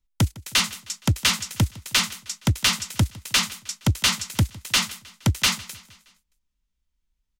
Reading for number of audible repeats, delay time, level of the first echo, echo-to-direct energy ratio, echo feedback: 3, 0.156 s, -21.0 dB, -19.5 dB, 54%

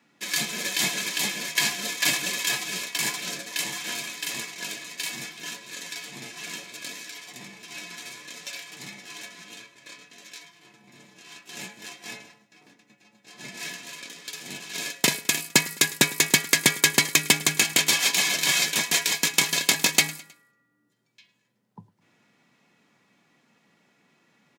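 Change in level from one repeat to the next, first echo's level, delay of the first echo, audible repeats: -7.0 dB, -20.0 dB, 0.105 s, 3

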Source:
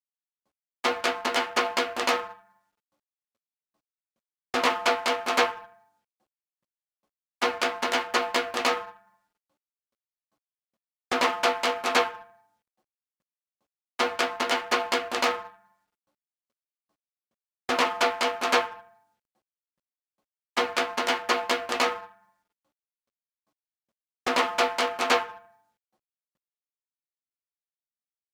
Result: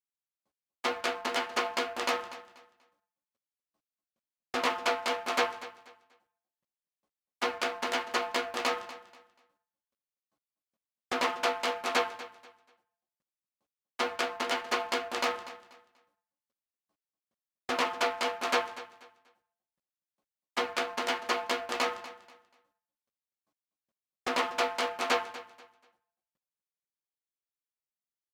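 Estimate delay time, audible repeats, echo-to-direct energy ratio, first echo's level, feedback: 0.242 s, 2, -15.5 dB, -16.0 dB, 27%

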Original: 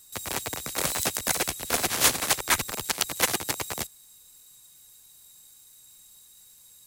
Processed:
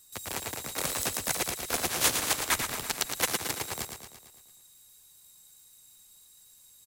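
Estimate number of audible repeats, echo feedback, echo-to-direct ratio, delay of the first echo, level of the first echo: 6, 57%, -5.5 dB, 0.113 s, -7.0 dB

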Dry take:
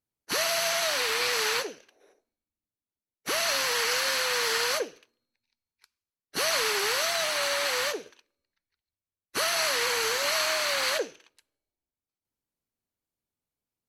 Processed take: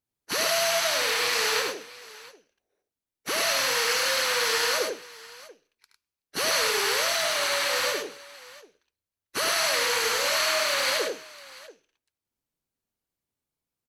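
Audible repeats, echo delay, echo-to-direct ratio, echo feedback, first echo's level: 3, 73 ms, -2.0 dB, no steady repeat, -6.0 dB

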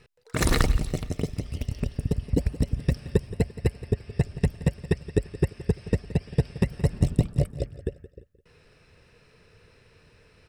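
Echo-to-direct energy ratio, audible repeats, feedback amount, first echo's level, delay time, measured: -16.0 dB, 3, 37%, -16.5 dB, 0.172 s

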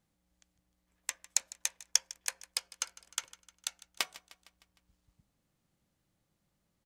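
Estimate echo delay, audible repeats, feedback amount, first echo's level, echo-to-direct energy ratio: 0.153 s, 4, 57%, -19.0 dB, -17.5 dB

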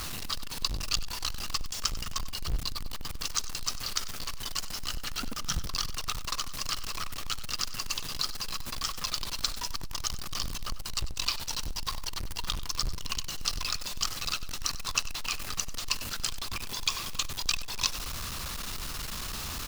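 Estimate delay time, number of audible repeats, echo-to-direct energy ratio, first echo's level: 96 ms, 3, -15.0 dB, -16.0 dB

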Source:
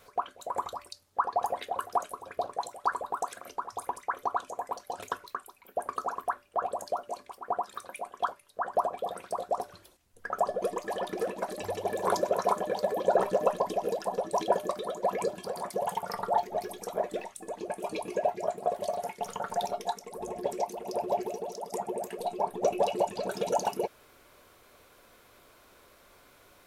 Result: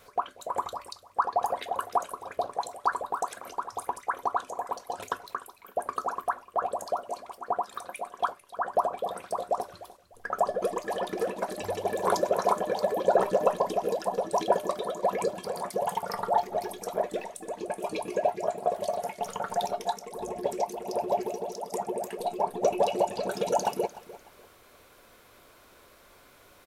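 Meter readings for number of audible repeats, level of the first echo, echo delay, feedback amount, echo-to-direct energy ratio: 2, -18.0 dB, 0.299 s, 28%, -17.5 dB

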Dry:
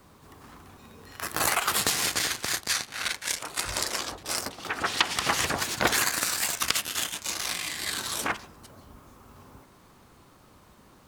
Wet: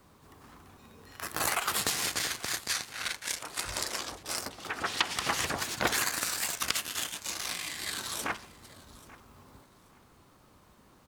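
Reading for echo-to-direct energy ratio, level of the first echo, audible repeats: -20.5 dB, -20.5 dB, 2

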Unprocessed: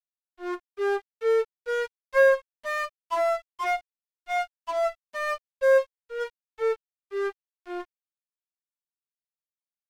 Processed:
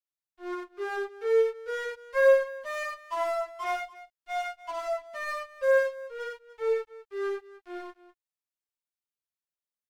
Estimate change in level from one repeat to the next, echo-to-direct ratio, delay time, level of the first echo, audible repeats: no steady repeat, 0.0 dB, 56 ms, -3.5 dB, 3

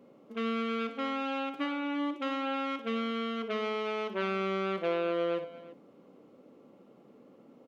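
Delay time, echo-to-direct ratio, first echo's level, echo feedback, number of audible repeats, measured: 58 ms, -9.5 dB, -10.5 dB, no steady repeat, 3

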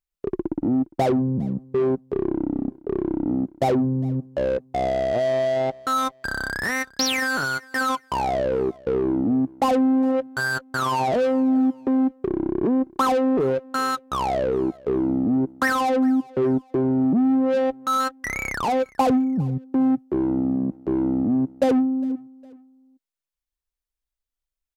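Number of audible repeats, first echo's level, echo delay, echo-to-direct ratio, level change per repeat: 2, -23.5 dB, 0.407 s, -23.0 dB, -8.5 dB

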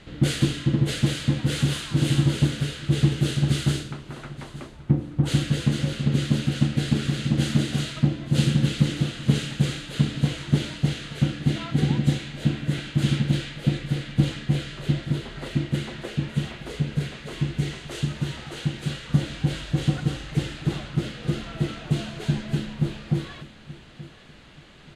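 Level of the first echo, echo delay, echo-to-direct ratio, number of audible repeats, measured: -17.0 dB, 0.879 s, -16.5 dB, 2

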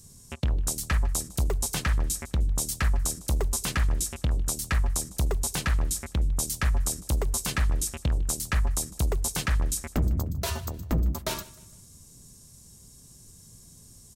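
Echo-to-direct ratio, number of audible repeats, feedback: -20.0 dB, 2, 37%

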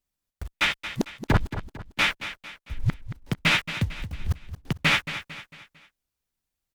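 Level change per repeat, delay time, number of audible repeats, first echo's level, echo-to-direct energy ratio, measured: -7.5 dB, 0.225 s, 4, -12.0 dB, -11.0 dB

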